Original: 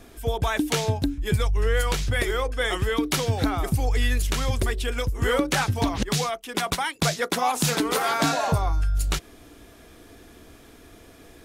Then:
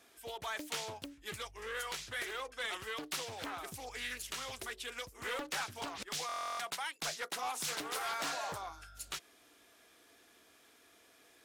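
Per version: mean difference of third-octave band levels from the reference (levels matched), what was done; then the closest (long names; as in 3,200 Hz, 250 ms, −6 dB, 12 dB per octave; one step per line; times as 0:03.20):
6.0 dB: high-pass filter 1,200 Hz 6 dB per octave
soft clipping −21.5 dBFS, distortion −15 dB
buffer that repeats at 0:06.27, samples 1,024, times 13
highs frequency-modulated by the lows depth 0.57 ms
level −8.5 dB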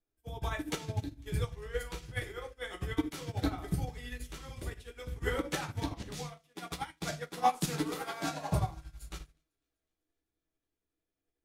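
8.5 dB: amplitude tremolo 11 Hz, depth 45%
on a send: delay with a high-pass on its return 251 ms, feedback 76%, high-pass 1,900 Hz, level −17 dB
on the sum: rectangular room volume 40 cubic metres, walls mixed, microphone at 0.6 metres
expander for the loud parts 2.5 to 1, over −41 dBFS
level −5.5 dB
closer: first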